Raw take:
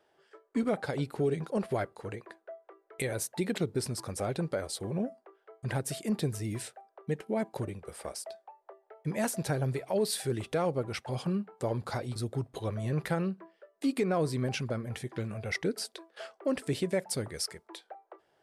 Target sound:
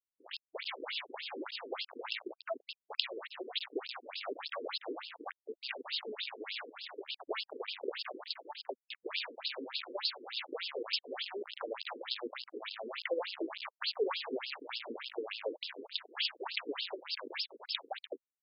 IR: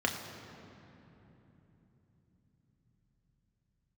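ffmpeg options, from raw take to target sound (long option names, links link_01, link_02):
-filter_complex "[0:a]lowpass=9400,asplit=6[link_01][link_02][link_03][link_04][link_05][link_06];[link_02]adelay=98,afreqshift=-36,volume=-19dB[link_07];[link_03]adelay=196,afreqshift=-72,volume=-23.6dB[link_08];[link_04]adelay=294,afreqshift=-108,volume=-28.2dB[link_09];[link_05]adelay=392,afreqshift=-144,volume=-32.7dB[link_10];[link_06]adelay=490,afreqshift=-180,volume=-37.3dB[link_11];[link_01][link_07][link_08][link_09][link_10][link_11]amix=inputs=6:normalize=0,aexciter=amount=9.2:drive=4.9:freq=2300,asettb=1/sr,asplit=3[link_12][link_13][link_14];[link_12]atrim=end=15.184[link_15];[link_13]atrim=start=15.18:end=16.25,asetpts=PTS-STARTPTS,afade=type=in:duration=0.004:curve=qsin,afade=type=out:start_time=1.066:duration=0.004:curve=qsin,highshelf=frequency=3200:gain=-11[link_16];[link_14]atrim=start=16.246[link_17];[link_15][link_16]acrossfade=duration=0.004:curve1=hsin:curve2=qsin[link_18];[link_18][link_17]acrossfade=duration=0.004:curve1=qsin:curve2=hsin,acrossover=split=200|3300[link_19][link_20][link_21];[link_19]acompressor=threshold=-34dB:ratio=4[link_22];[link_20]acompressor=threshold=-31dB:ratio=4[link_23];[link_21]acompressor=threshold=-24dB:ratio=4[link_24];[link_22][link_23][link_24]amix=inputs=3:normalize=0,aeval=exprs='(tanh(5.62*val(0)+0.2)-tanh(0.2))/5.62':channel_layout=same,acompressor=threshold=-40dB:ratio=12,asettb=1/sr,asplit=3[link_25][link_26][link_27];[link_25]atrim=end=12.974[link_28];[link_26]atrim=start=12.97:end=14.39,asetpts=PTS-STARTPTS,afade=type=in:duration=0.004:curve=qsin,afade=type=out:start_time=1.416:duration=0.004:curve=qsin,equalizer=frequency=125:width_type=o:width=1:gain=-12,equalizer=frequency=250:width_type=o:width=1:gain=4,equalizer=frequency=500:width_type=o:width=1:gain=11[link_29];[link_27]atrim=start=14.386[link_30];[link_28][link_29]acrossfade=duration=0.004:curve1=hsin:curve2=qsin[link_31];[link_31][link_30]acrossfade=duration=0.004:curve1=qsin:curve2=hsin,acrusher=bits=5:dc=4:mix=0:aa=0.000001,afftfilt=real='re*between(b*sr/1024,340*pow(3800/340,0.5+0.5*sin(2*PI*3.4*pts/sr))/1.41,340*pow(3800/340,0.5+0.5*sin(2*PI*3.4*pts/sr))*1.41)':imag='im*between(b*sr/1024,340*pow(3800/340,0.5+0.5*sin(2*PI*3.4*pts/sr))/1.41,340*pow(3800/340,0.5+0.5*sin(2*PI*3.4*pts/sr))*1.41)':win_size=1024:overlap=0.75,volume=18dB"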